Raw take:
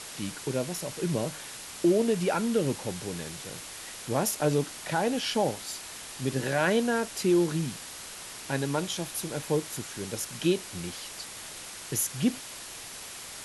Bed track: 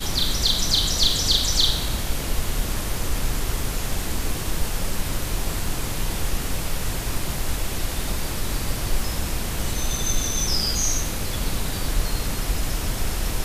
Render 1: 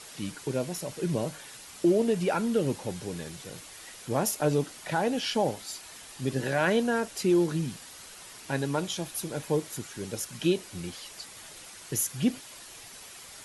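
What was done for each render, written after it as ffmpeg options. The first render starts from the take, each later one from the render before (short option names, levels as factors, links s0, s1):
-af "afftdn=nr=7:nf=-43"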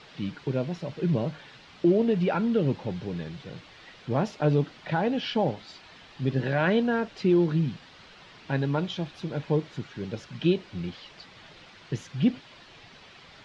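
-af "lowpass=f=4100:w=0.5412,lowpass=f=4100:w=1.3066,equalizer=f=150:w=1.1:g=6"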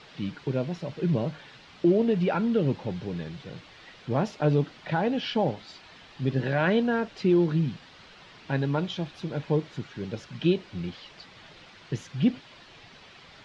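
-af anull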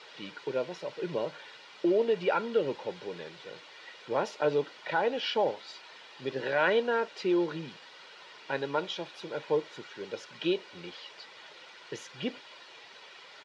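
-af "highpass=420,aecho=1:1:2.1:0.35"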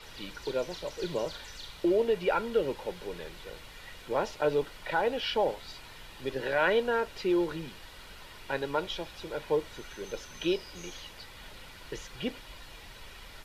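-filter_complex "[1:a]volume=0.0473[s0];[0:a][s0]amix=inputs=2:normalize=0"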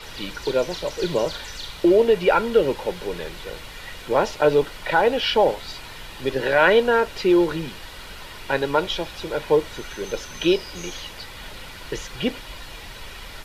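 -af "volume=3.16"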